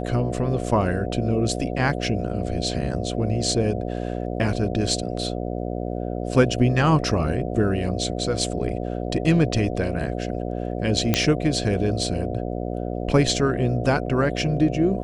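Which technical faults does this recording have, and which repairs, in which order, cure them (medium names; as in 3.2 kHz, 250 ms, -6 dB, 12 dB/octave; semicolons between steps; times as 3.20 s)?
buzz 60 Hz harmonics 12 -28 dBFS
11.14 s: pop -4 dBFS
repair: de-click; de-hum 60 Hz, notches 12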